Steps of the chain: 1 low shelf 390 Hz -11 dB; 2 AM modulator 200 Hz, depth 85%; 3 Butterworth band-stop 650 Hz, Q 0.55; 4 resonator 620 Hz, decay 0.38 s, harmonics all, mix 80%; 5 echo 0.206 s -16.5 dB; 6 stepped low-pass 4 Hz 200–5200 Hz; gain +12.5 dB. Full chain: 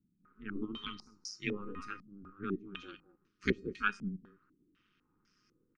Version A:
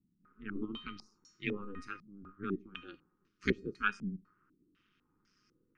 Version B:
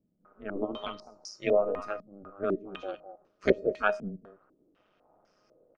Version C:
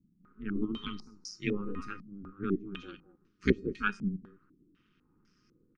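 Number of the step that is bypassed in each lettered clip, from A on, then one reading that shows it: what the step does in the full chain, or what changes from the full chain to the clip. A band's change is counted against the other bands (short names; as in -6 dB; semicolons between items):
5, momentary loudness spread change +1 LU; 3, 500 Hz band +13.0 dB; 1, 125 Hz band +5.5 dB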